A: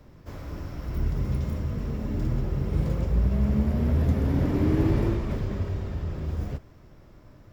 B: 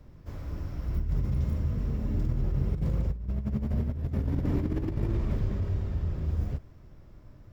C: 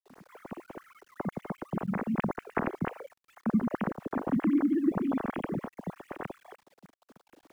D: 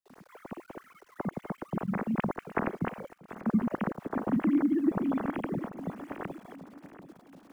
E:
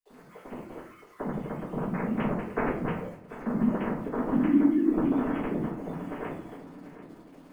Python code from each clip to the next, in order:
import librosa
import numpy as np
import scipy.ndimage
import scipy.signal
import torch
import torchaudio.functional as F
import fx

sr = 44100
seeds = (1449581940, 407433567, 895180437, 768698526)

y1 = fx.low_shelf(x, sr, hz=160.0, db=8.5)
y1 = fx.over_compress(y1, sr, threshold_db=-19.0, ratio=-0.5)
y1 = y1 * 10.0 ** (-7.5 / 20.0)
y2 = fx.sine_speech(y1, sr)
y2 = fx.quant_dither(y2, sr, seeds[0], bits=10, dither='none')
y2 = y2 * 10.0 ** (-4.0 / 20.0)
y3 = fx.echo_feedback(y2, sr, ms=739, feedback_pct=45, wet_db=-14.5)
y4 = fx.room_shoebox(y3, sr, seeds[1], volume_m3=43.0, walls='mixed', distance_m=2.0)
y4 = y4 * 10.0 ** (-8.0 / 20.0)